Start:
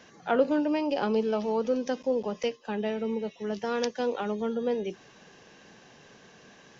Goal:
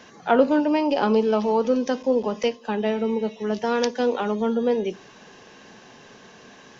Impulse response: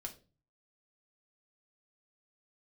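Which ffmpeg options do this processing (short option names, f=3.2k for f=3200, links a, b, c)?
-filter_complex "[0:a]asplit=2[a][b];[b]equalizer=f=125:t=o:w=1:g=-10,equalizer=f=250:t=o:w=1:g=11,equalizer=f=1k:t=o:w=1:g=12,equalizer=f=4k:t=o:w=1:g=5[c];[1:a]atrim=start_sample=2205[d];[c][d]afir=irnorm=-1:irlink=0,volume=-11dB[e];[a][e]amix=inputs=2:normalize=0,volume=4dB"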